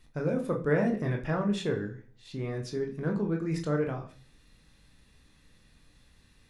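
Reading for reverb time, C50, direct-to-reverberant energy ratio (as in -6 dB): 0.45 s, 11.0 dB, 1.0 dB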